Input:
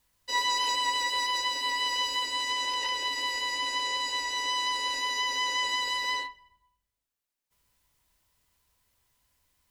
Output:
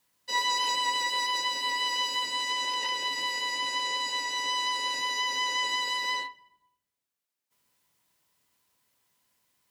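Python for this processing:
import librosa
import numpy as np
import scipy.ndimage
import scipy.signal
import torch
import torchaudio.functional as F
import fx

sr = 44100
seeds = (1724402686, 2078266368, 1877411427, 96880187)

y = fx.octave_divider(x, sr, octaves=1, level_db=-6.0)
y = scipy.signal.sosfilt(scipy.signal.butter(2, 170.0, 'highpass', fs=sr, output='sos'), y)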